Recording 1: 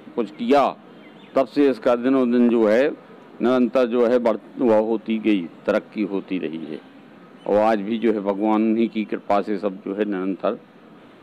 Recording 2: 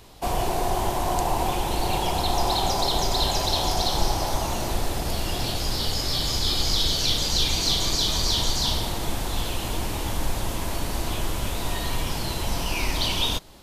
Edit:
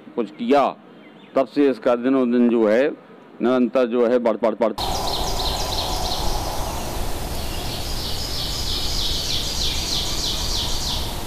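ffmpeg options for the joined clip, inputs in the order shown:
-filter_complex "[0:a]apad=whole_dur=11.26,atrim=end=11.26,asplit=3[a][b][c];[a]atrim=end=4.422[d];[b]atrim=start=4.238:end=4.422[e];[c]atrim=start=4.238:end=4.422[f];[1:a]atrim=start=2.528:end=9.01[g];[d][e]acrossfade=d=0.004:c1=hsin:c2=hsin[h];[h][f]acrossfade=d=0.004:c1=hsin:c2=hsin[i];[i][g]acrossfade=d=0.004:c1=hsin:c2=hsin"

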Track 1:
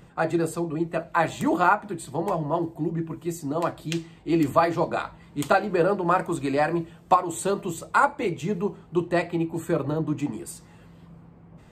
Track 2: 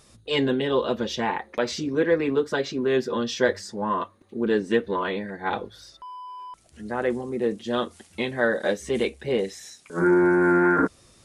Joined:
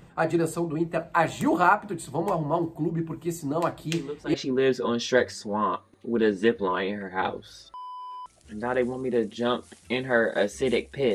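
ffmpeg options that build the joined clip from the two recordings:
-filter_complex "[1:a]asplit=2[a][b];[0:a]apad=whole_dur=11.14,atrim=end=11.14,atrim=end=4.342[c];[b]atrim=start=2.618:end=9.42[d];[a]atrim=start=2.21:end=2.62,asetpts=PTS-STARTPTS,volume=-12.5dB,afade=t=in:d=0.004:c=hsin,afade=t=out:st=0.406:d=0.004:c=hsin,adelay=173313S[e];[c][d]acrossfade=d=0.004:c1=hsin:c2=hsin[f];[f][e]amix=inputs=2:normalize=0"

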